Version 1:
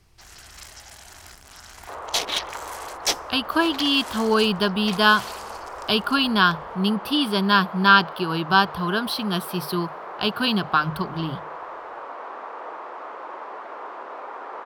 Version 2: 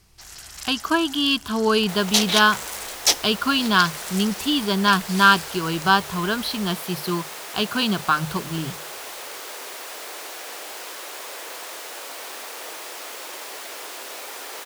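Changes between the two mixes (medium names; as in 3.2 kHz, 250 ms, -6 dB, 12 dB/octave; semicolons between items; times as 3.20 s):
speech: entry -2.65 s; first sound: add treble shelf 3.8 kHz +8.5 dB; second sound: remove resonant low-pass 1.1 kHz, resonance Q 2.3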